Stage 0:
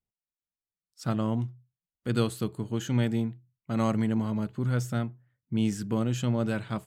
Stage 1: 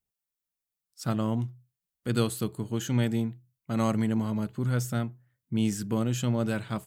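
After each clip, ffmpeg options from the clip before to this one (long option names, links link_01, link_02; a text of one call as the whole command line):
ffmpeg -i in.wav -af "highshelf=frequency=7800:gain=9.5" out.wav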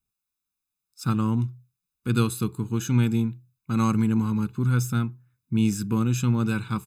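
ffmpeg -i in.wav -af "aecho=1:1:0.8:0.98" out.wav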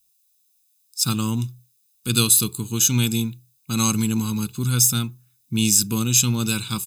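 ffmpeg -i in.wav -af "aexciter=amount=8.3:drive=3.6:freq=2700" out.wav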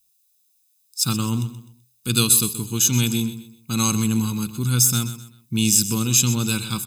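ffmpeg -i in.wav -af "aecho=1:1:127|254|381:0.224|0.0761|0.0259" out.wav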